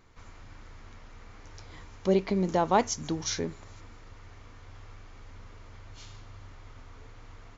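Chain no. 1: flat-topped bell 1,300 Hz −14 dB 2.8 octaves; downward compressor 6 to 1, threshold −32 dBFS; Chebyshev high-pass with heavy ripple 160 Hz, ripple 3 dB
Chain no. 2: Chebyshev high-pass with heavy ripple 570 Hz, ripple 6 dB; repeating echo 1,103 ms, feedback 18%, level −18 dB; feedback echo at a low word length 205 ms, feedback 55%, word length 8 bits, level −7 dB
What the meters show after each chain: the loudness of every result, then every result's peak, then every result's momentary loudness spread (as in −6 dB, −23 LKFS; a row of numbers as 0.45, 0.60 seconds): −40.0, −34.5 LKFS; −25.0, −14.0 dBFS; 19, 25 LU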